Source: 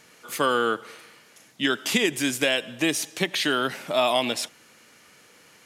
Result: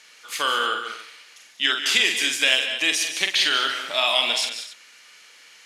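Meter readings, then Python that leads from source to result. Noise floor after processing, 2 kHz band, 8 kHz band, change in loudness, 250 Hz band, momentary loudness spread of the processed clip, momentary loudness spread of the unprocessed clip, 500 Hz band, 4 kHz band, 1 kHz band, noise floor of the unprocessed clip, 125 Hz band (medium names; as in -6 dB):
-51 dBFS, +5.0 dB, +4.0 dB, +4.0 dB, -11.0 dB, 14 LU, 6 LU, -6.5 dB, +8.0 dB, +0.5 dB, -55 dBFS, under -15 dB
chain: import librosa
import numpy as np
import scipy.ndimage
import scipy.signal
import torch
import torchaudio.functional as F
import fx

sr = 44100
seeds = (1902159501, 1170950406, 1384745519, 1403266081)

y = fx.bandpass_q(x, sr, hz=3600.0, q=0.76)
y = fx.echo_multitap(y, sr, ms=(46, 146, 188, 214, 283), db=(-6.0, -12.5, -11.0, -14.0, -16.5))
y = y * 10.0 ** (6.5 / 20.0)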